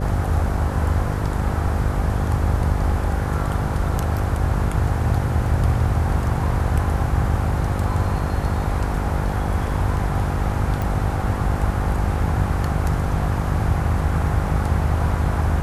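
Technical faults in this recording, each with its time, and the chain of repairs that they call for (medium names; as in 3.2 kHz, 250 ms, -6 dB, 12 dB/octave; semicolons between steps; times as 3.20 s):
buzz 50 Hz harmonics 11 -25 dBFS
10.82 s: pop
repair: de-click; de-hum 50 Hz, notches 11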